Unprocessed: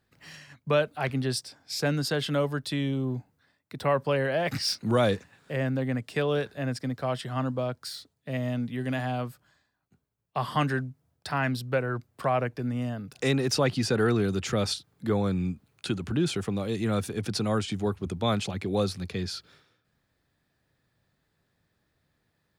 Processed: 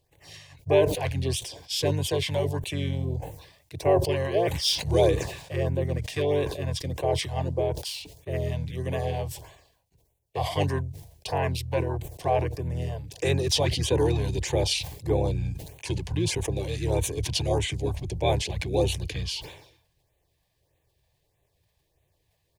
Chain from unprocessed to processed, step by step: harmony voices -7 st -1 dB; LFO notch sine 1.6 Hz 340–5200 Hz; static phaser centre 550 Hz, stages 4; decay stretcher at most 75 dB/s; trim +3 dB

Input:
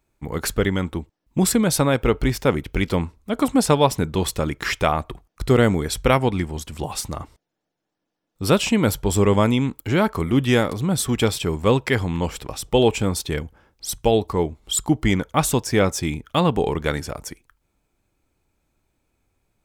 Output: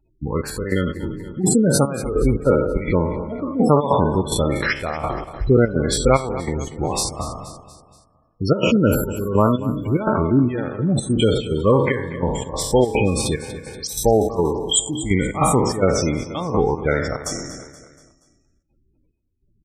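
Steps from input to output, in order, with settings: spectral sustain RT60 1.00 s; trance gate "xxxx...xx.xxx." 146 bpm -12 dB; spectral gate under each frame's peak -15 dB strong; feedback delay 238 ms, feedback 47%, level -16 dB; in parallel at -1 dB: compression, threshold -31 dBFS, peak gain reduction 19 dB

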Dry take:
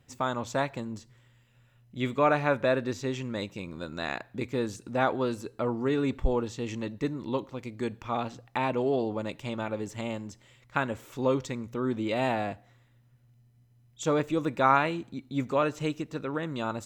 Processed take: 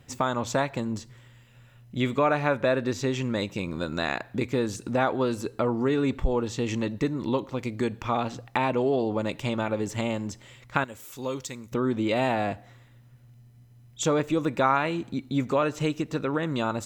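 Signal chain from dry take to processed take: 10.84–11.72 s: pre-emphasis filter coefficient 0.8; compression 2:1, threshold -34 dBFS, peak gain reduction 10 dB; trim +8.5 dB

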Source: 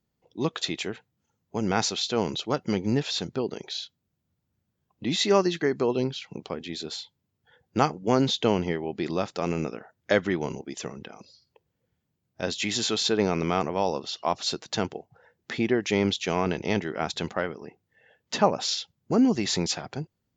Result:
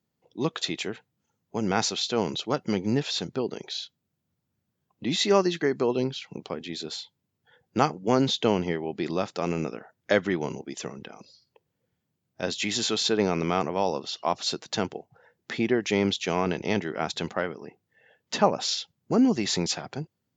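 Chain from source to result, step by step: high-pass 98 Hz

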